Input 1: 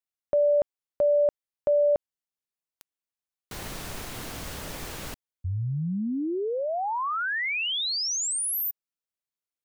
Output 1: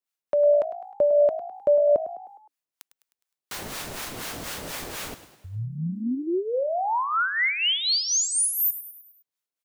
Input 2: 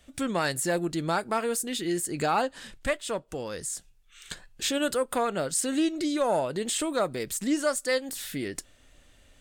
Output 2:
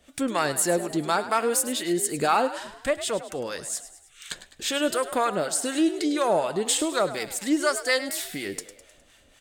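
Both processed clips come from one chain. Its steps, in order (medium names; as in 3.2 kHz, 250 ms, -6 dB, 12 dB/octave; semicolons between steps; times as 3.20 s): harmonic tremolo 4.1 Hz, depth 70%, crossover 720 Hz; bass shelf 150 Hz -11.5 dB; on a send: frequency-shifting echo 103 ms, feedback 51%, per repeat +55 Hz, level -13.5 dB; on the sum: trim +7 dB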